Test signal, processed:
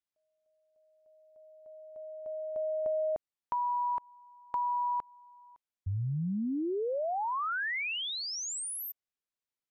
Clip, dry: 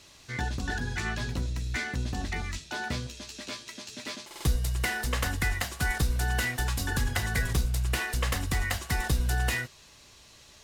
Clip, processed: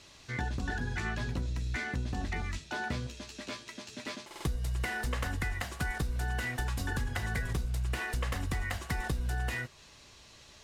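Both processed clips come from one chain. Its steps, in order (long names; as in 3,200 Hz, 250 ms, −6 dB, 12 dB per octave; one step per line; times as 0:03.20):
high-shelf EQ 10,000 Hz −11.5 dB
downward compressor, threshold −29 dBFS
dynamic equaliser 4,600 Hz, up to −4 dB, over −50 dBFS, Q 0.74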